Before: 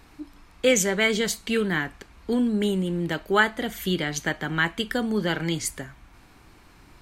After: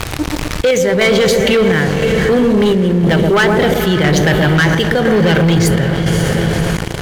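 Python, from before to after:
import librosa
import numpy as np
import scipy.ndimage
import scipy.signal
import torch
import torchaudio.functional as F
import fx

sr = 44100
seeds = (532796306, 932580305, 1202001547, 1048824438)

p1 = fx.graphic_eq(x, sr, hz=(250, 500, 1000, 8000), db=(-9, 5, -3, -11))
p2 = fx.rider(p1, sr, range_db=10, speed_s=0.5)
p3 = p1 + (p2 * librosa.db_to_amplitude(1.0))
p4 = fx.peak_eq(p3, sr, hz=110.0, db=12.5, octaves=1.3)
p5 = p4 + fx.echo_wet_lowpass(p4, sr, ms=125, feedback_pct=48, hz=800.0, wet_db=-5.5, dry=0)
p6 = fx.quant_dither(p5, sr, seeds[0], bits=8, dither='none')
p7 = scipy.signal.sosfilt(scipy.signal.butter(2, 11000.0, 'lowpass', fs=sr, output='sos'), p6)
p8 = fx.echo_diffused(p7, sr, ms=535, feedback_pct=47, wet_db=-11.5)
p9 = fx.chopper(p8, sr, hz=0.99, depth_pct=65, duty_pct=70)
p10 = fx.leveller(p9, sr, passes=3)
p11 = fx.env_flatten(p10, sr, amount_pct=70)
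y = p11 * librosa.db_to_amplitude(-5.0)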